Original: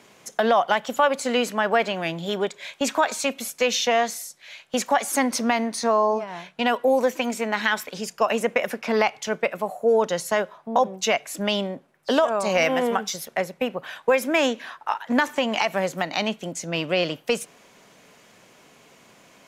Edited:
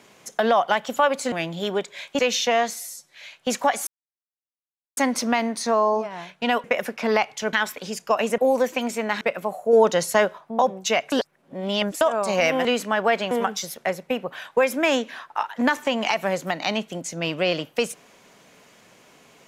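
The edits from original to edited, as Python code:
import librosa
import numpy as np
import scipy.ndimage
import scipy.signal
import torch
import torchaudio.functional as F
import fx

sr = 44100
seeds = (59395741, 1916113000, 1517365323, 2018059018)

y = fx.edit(x, sr, fx.move(start_s=1.32, length_s=0.66, to_s=12.82),
    fx.cut(start_s=2.85, length_s=0.74),
    fx.stretch_span(start_s=4.14, length_s=0.26, factor=1.5),
    fx.insert_silence(at_s=5.14, length_s=1.1),
    fx.swap(start_s=6.81, length_s=0.83, other_s=8.49, other_length_s=0.89),
    fx.clip_gain(start_s=9.9, length_s=0.65, db=4.0),
    fx.reverse_span(start_s=11.29, length_s=0.89), tone=tone)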